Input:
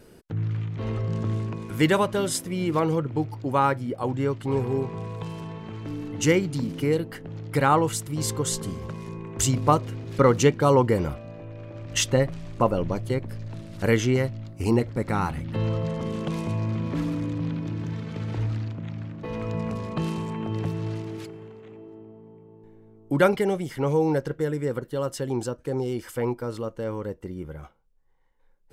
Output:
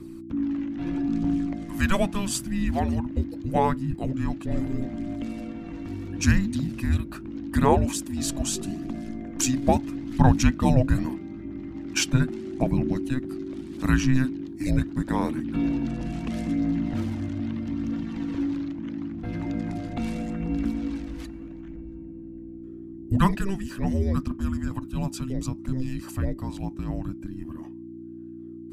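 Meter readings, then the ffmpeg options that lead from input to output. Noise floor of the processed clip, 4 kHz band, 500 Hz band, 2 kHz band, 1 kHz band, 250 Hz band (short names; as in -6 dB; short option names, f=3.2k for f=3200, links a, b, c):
-40 dBFS, -1.5 dB, -7.5 dB, -1.5 dB, -3.0 dB, +3.0 dB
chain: -af "aphaser=in_gain=1:out_gain=1:delay=2.2:decay=0.3:speed=0.78:type=triangular,aeval=exprs='val(0)+0.0126*(sin(2*PI*60*n/s)+sin(2*PI*2*60*n/s)/2+sin(2*PI*3*60*n/s)/3+sin(2*PI*4*60*n/s)/4+sin(2*PI*5*60*n/s)/5)':c=same,afreqshift=-390,volume=-1dB"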